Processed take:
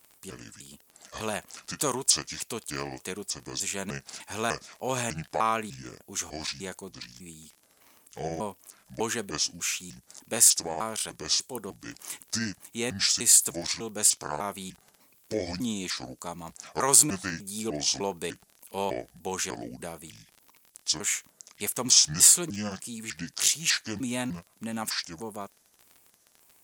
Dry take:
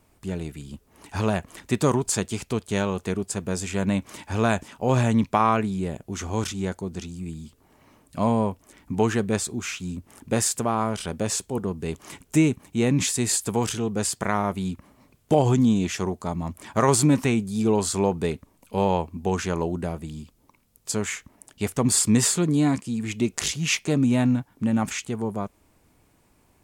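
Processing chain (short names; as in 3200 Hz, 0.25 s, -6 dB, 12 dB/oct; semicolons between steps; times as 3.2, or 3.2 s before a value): trilling pitch shifter -6 st, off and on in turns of 0.3 s; RIAA curve recording; crackle 30/s -33 dBFS; gain -5 dB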